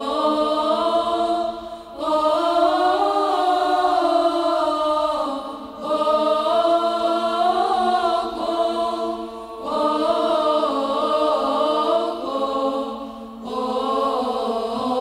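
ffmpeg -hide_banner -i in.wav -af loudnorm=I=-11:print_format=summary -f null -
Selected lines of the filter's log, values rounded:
Input Integrated:    -20.9 LUFS
Input True Peak:      -7.5 dBTP
Input LRA:             4.0 LU
Input Threshold:     -31.2 LUFS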